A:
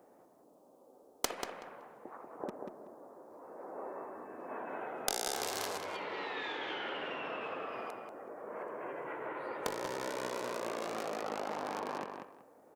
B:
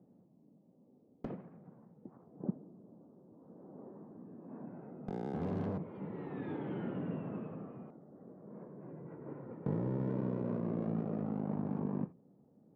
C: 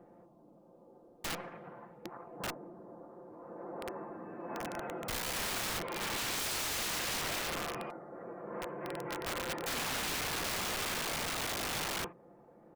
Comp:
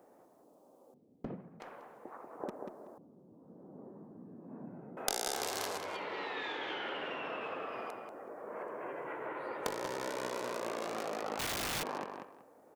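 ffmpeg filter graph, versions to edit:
-filter_complex "[1:a]asplit=2[a][b];[0:a]asplit=4[c][d][e][f];[c]atrim=end=0.942[g];[a]atrim=start=0.938:end=1.602[h];[d]atrim=start=1.598:end=2.982[i];[b]atrim=start=2.978:end=4.972[j];[e]atrim=start=4.968:end=11.392[k];[2:a]atrim=start=11.388:end=11.832[l];[f]atrim=start=11.828[m];[g][h]acrossfade=d=0.004:c1=hsin:c2=hsin[n];[n][i]acrossfade=d=0.004:c1=hsin:c2=hsin[o];[o][j]acrossfade=d=0.004:c1=hsin:c2=hsin[p];[p][k]acrossfade=d=0.004:c1=hsin:c2=hsin[q];[q][l]acrossfade=d=0.004:c1=hsin:c2=hsin[r];[r][m]acrossfade=d=0.004:c1=hsin:c2=hsin"

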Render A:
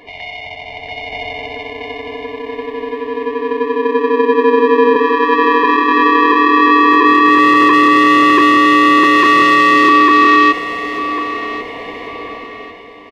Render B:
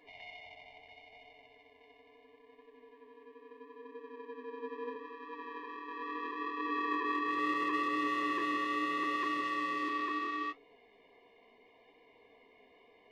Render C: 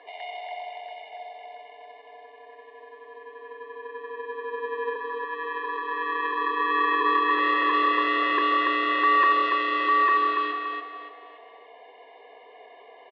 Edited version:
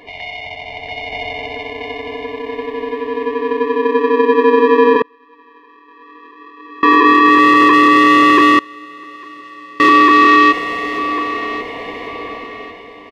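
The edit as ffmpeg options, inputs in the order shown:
-filter_complex "[1:a]asplit=2[a][b];[0:a]asplit=3[c][d][e];[c]atrim=end=5.022[f];[a]atrim=start=5.018:end=6.832[g];[d]atrim=start=6.828:end=8.592[h];[b]atrim=start=8.588:end=9.802[i];[e]atrim=start=9.798[j];[f][g]acrossfade=d=0.004:c1=hsin:c2=hsin[k];[k][h]acrossfade=d=0.004:c1=hsin:c2=hsin[l];[l][i]acrossfade=d=0.004:c1=hsin:c2=hsin[m];[m][j]acrossfade=d=0.004:c1=hsin:c2=hsin"

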